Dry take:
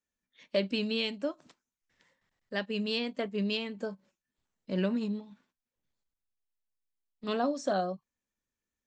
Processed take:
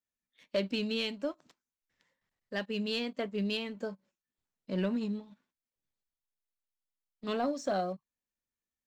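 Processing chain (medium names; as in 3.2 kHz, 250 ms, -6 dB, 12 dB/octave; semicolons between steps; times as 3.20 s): waveshaping leveller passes 1; trim -5 dB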